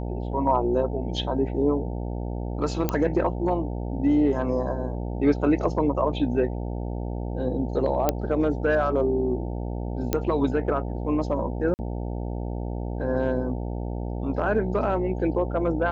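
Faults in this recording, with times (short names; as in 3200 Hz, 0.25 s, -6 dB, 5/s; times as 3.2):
buzz 60 Hz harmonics 15 -30 dBFS
2.89 pop -10 dBFS
8.09 pop -7 dBFS
10.13 pop -9 dBFS
11.74–11.79 gap 49 ms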